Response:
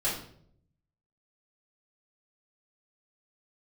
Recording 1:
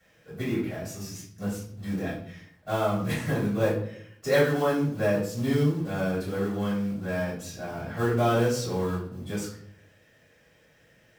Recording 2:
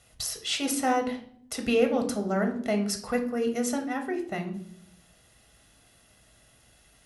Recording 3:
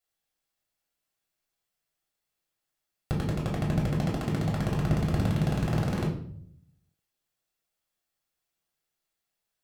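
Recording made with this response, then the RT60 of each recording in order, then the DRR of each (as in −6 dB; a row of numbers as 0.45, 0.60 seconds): 1; 0.65, 0.65, 0.65 seconds; −9.5, 4.0, −3.5 decibels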